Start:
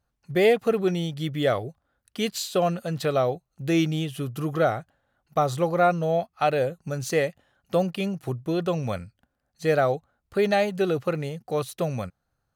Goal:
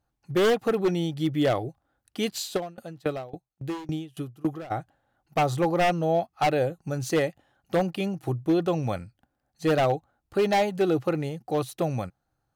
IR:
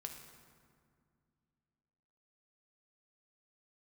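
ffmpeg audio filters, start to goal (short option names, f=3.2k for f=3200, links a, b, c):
-filter_complex "[0:a]equalizer=f=125:t=o:w=0.33:g=4,equalizer=f=315:t=o:w=0.33:g=9,equalizer=f=800:t=o:w=0.33:g=7,aeval=exprs='0.2*(abs(mod(val(0)/0.2+3,4)-2)-1)':c=same,asplit=3[a][b][c];[a]afade=t=out:st=2.56:d=0.02[d];[b]aeval=exprs='val(0)*pow(10,-25*if(lt(mod(3.6*n/s,1),2*abs(3.6)/1000),1-mod(3.6*n/s,1)/(2*abs(3.6)/1000),(mod(3.6*n/s,1)-2*abs(3.6)/1000)/(1-2*abs(3.6)/1000))/20)':c=same,afade=t=in:st=2.56:d=0.02,afade=t=out:st=4.7:d=0.02[e];[c]afade=t=in:st=4.7:d=0.02[f];[d][e][f]amix=inputs=3:normalize=0,volume=-2dB"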